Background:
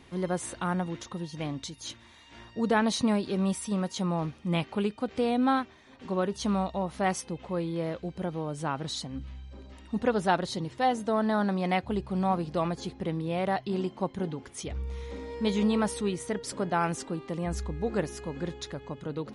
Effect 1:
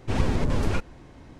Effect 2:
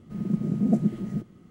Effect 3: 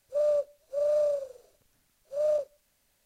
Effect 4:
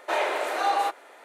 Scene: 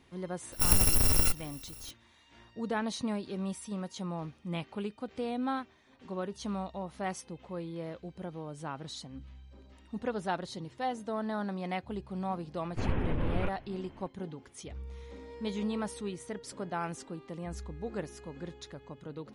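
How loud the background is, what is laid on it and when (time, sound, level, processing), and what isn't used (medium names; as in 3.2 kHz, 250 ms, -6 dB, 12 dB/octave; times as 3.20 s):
background -8 dB
0.52 s: add 1 -1 dB + bit-reversed sample order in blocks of 256 samples
12.69 s: add 1 -6.5 dB + CVSD coder 16 kbps
not used: 2, 3, 4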